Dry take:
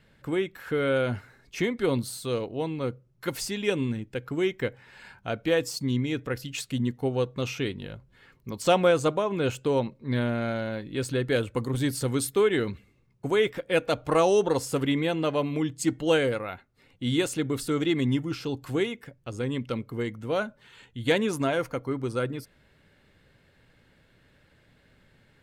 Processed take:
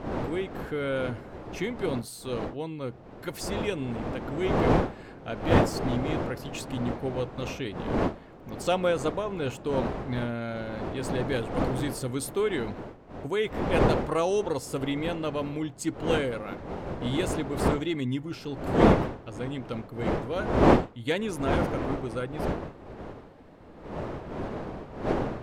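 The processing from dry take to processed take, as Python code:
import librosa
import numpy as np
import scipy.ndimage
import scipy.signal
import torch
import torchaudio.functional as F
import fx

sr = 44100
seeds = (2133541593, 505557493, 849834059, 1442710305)

y = fx.dmg_wind(x, sr, seeds[0], corner_hz=540.0, level_db=-26.0)
y = y * 10.0 ** (-4.5 / 20.0)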